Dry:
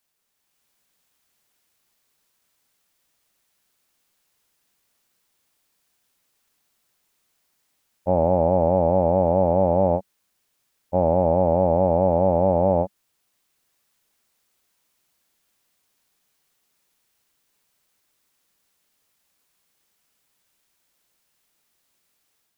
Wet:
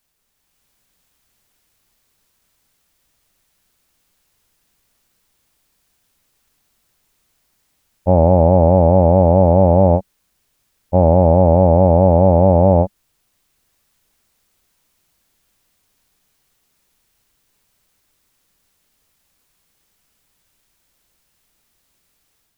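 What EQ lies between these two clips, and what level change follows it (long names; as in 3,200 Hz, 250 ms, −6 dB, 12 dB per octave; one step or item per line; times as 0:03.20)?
low-shelf EQ 75 Hz +11 dB
low-shelf EQ 240 Hz +4.5 dB
+5.0 dB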